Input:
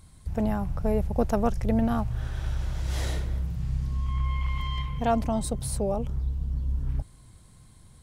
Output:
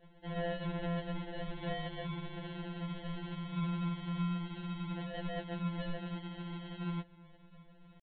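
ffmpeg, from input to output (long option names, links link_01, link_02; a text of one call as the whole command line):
ffmpeg -i in.wav -filter_complex "[0:a]lowshelf=frequency=290:gain=-5.5,alimiter=limit=-23.5dB:level=0:latency=1:release=18,acrossover=split=140|290|1500[link_01][link_02][link_03][link_04];[link_01]acompressor=threshold=-33dB:ratio=4[link_05];[link_03]acompressor=threshold=-44dB:ratio=4[link_06];[link_04]acompressor=threshold=-48dB:ratio=4[link_07];[link_05][link_02][link_06][link_07]amix=inputs=4:normalize=0,asetrate=58866,aresample=44100,atempo=0.749154,adynamicsmooth=sensitivity=5.5:basefreq=2400,aresample=8000,acrusher=samples=20:mix=1:aa=0.000001,aresample=44100,afftfilt=real='re*2.83*eq(mod(b,8),0)':imag='im*2.83*eq(mod(b,8),0)':win_size=2048:overlap=0.75,volume=2dB" out.wav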